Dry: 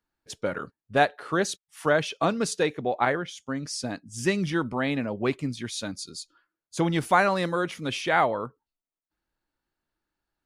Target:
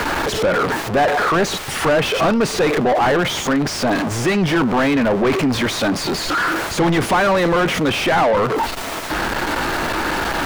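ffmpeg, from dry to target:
-filter_complex "[0:a]aeval=exprs='val(0)+0.5*0.0501*sgn(val(0))':c=same,asplit=2[s0][s1];[s1]highpass=f=720:p=1,volume=39.8,asoftclip=type=tanh:threshold=0.422[s2];[s0][s2]amix=inputs=2:normalize=0,lowpass=f=1300:p=1,volume=0.501"

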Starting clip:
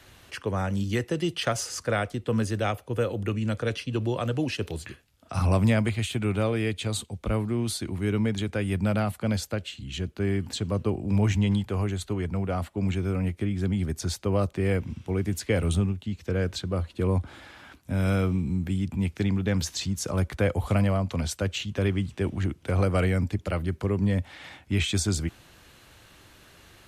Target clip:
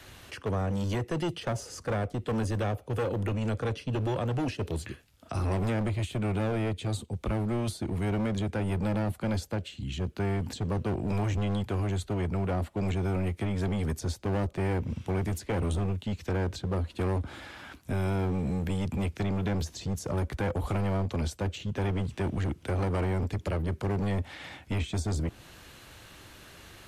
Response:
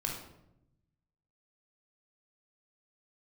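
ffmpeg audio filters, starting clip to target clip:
-filter_complex "[0:a]acrossover=split=730[s0][s1];[s0]asoftclip=type=hard:threshold=0.0316[s2];[s1]acompressor=threshold=0.00631:ratio=6[s3];[s2][s3]amix=inputs=2:normalize=0,volume=1.41"

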